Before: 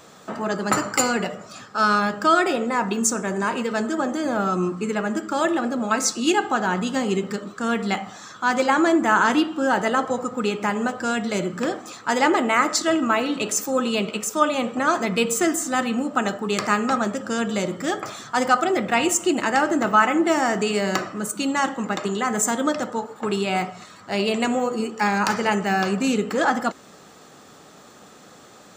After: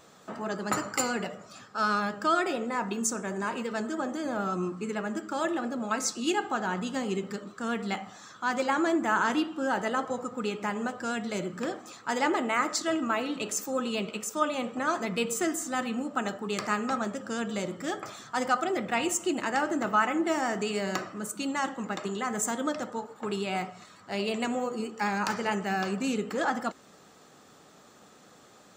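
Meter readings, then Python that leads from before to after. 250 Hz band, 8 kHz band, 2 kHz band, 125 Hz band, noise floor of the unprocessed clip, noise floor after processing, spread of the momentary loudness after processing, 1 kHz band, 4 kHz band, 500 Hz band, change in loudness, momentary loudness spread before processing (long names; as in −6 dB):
−8.0 dB, −8.0 dB, −8.0 dB, −8.0 dB, −47 dBFS, −55 dBFS, 8 LU, −8.0 dB, −8.0 dB, −8.0 dB, −8.0 dB, 8 LU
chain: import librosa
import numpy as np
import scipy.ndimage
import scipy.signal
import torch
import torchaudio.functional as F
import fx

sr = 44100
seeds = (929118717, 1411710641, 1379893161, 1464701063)

y = fx.vibrato(x, sr, rate_hz=9.1, depth_cents=25.0)
y = y * 10.0 ** (-8.0 / 20.0)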